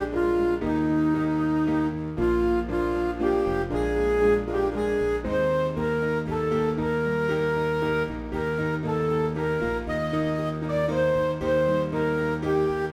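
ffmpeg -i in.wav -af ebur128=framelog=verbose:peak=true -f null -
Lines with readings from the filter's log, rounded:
Integrated loudness:
  I:         -25.0 LUFS
  Threshold: -35.0 LUFS
Loudness range:
  LRA:         1.7 LU
  Threshold: -45.2 LUFS
  LRA low:   -26.2 LUFS
  LRA high:  -24.5 LUFS
True peak:
  Peak:      -10.4 dBFS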